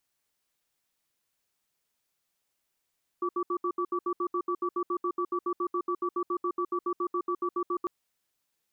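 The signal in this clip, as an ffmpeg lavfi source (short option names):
-f lavfi -i "aevalsrc='0.0355*(sin(2*PI*354*t)+sin(2*PI*1150*t))*clip(min(mod(t,0.14),0.07-mod(t,0.14))/0.005,0,1)':d=4.65:s=44100"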